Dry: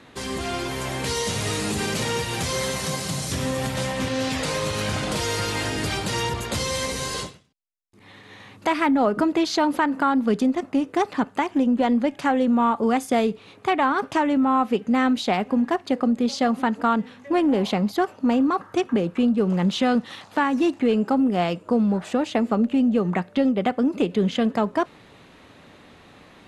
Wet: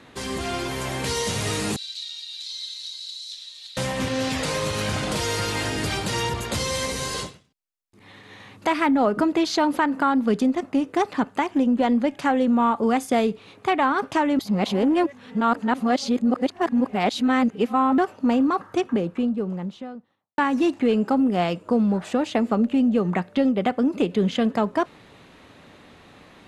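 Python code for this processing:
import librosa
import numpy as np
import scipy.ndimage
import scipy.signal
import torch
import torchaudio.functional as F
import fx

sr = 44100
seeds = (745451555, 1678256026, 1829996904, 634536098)

y = fx.ladder_bandpass(x, sr, hz=4100.0, resonance_pct=85, at=(1.76, 3.77))
y = fx.studio_fade_out(y, sr, start_s=18.54, length_s=1.84)
y = fx.edit(y, sr, fx.reverse_span(start_s=14.39, length_s=3.59), tone=tone)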